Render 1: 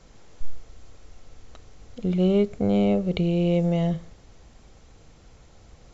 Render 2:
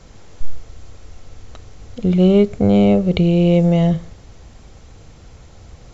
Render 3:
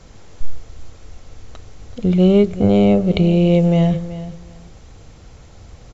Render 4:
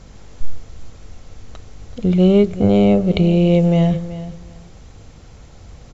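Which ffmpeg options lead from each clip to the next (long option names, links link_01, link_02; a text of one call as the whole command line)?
ffmpeg -i in.wav -af "equalizer=frequency=89:width_type=o:width=1.2:gain=5,volume=7.5dB" out.wav
ffmpeg -i in.wav -af "aecho=1:1:379|758:0.188|0.0339" out.wav
ffmpeg -i in.wav -af "aeval=exprs='val(0)+0.00562*(sin(2*PI*50*n/s)+sin(2*PI*2*50*n/s)/2+sin(2*PI*3*50*n/s)/3+sin(2*PI*4*50*n/s)/4+sin(2*PI*5*50*n/s)/5)':channel_layout=same" out.wav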